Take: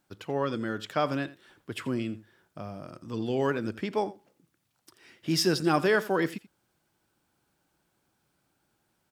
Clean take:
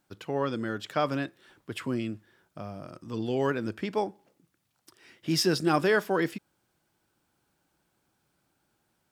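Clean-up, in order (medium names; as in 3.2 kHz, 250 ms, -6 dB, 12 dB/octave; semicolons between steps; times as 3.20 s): inverse comb 85 ms -17.5 dB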